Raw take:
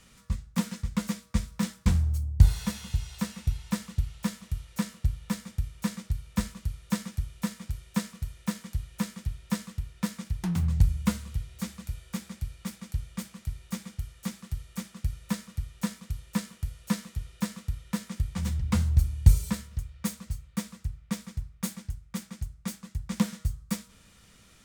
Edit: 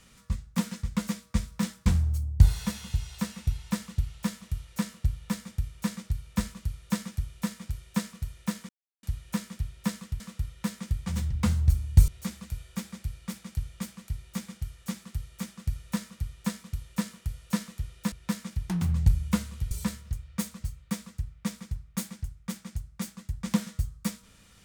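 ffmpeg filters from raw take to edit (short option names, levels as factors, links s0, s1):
-filter_complex "[0:a]asplit=6[s0][s1][s2][s3][s4][s5];[s0]atrim=end=8.69,asetpts=PTS-STARTPTS,afade=t=out:st=8.686:d=0.004:c=hsin,apad=pad_dur=0.34[s6];[s1]atrim=start=8.69:end=9.862,asetpts=PTS-STARTPTS,afade=t=in:d=0.004:c=hsin[s7];[s2]atrim=start=17.488:end=19.372[s8];[s3]atrim=start=11.448:end=17.492[s9];[s4]atrim=start=9.858:end=11.452[s10];[s5]atrim=start=19.368[s11];[s6][s7]concat=n=2:v=0:a=1[s12];[s12][s8]acrossfade=d=0.004:c1=hsin:c2=hsin[s13];[s13][s9]acrossfade=d=0.004:c1=hsin:c2=hsin[s14];[s14][s10]acrossfade=d=0.004:c1=hsin:c2=hsin[s15];[s15][s11]acrossfade=d=0.004:c1=hsin:c2=hsin"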